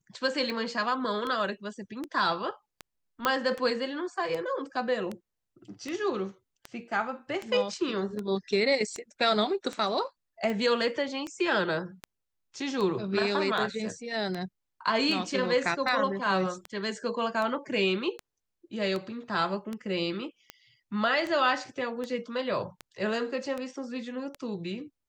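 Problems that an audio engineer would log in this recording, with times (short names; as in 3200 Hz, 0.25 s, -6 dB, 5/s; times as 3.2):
tick 78 rpm -21 dBFS
3.25 pop -11 dBFS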